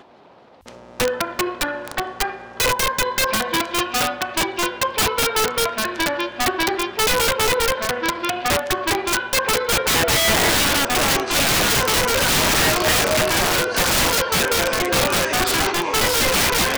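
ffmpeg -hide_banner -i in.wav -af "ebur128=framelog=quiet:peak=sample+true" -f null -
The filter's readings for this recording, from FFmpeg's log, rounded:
Integrated loudness:
  I:         -18.4 LUFS
  Threshold: -28.5 LUFS
Loudness range:
  LRA:         5.0 LU
  Threshold: -38.4 LUFS
  LRA low:   -21.2 LUFS
  LRA high:  -16.2 LUFS
Sample peak:
  Peak:       -9.9 dBFS
True peak:
  Peak:       -8.1 dBFS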